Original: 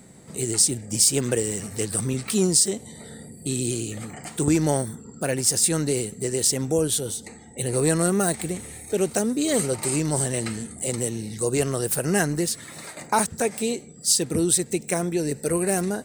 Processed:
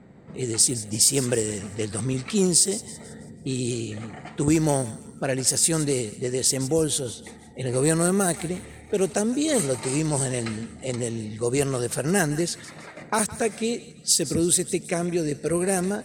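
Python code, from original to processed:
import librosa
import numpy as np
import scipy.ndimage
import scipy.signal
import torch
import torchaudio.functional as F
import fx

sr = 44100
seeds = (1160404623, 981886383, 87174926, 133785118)

y = fx.env_lowpass(x, sr, base_hz=1900.0, full_db=-17.0)
y = fx.peak_eq(y, sr, hz=890.0, db=-6.5, octaves=0.35, at=(12.9, 15.58))
y = fx.echo_thinned(y, sr, ms=164, feedback_pct=41, hz=1200.0, wet_db=-15)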